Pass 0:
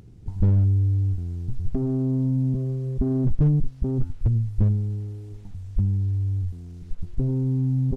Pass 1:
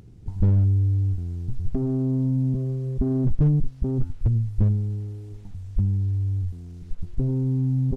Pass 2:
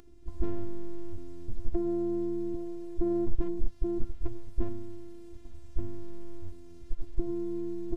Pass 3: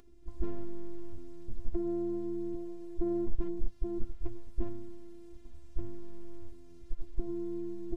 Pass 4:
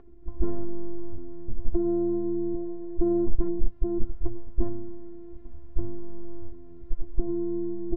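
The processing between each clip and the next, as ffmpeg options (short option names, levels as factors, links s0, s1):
-af anull
-af "afftfilt=real='hypot(re,im)*cos(PI*b)':imag='0':win_size=512:overlap=0.75"
-af "flanger=delay=4.5:depth=1.5:regen=-58:speed=1.8:shape=triangular"
-af "lowpass=1200,volume=2.51"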